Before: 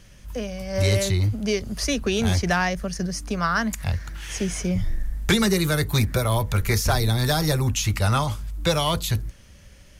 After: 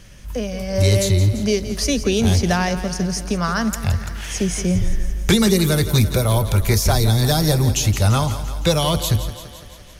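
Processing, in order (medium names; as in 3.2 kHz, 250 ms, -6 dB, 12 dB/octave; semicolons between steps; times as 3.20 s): dynamic bell 1.6 kHz, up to -7 dB, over -39 dBFS, Q 0.74; thinning echo 170 ms, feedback 64%, high-pass 160 Hz, level -12 dB; trim +5.5 dB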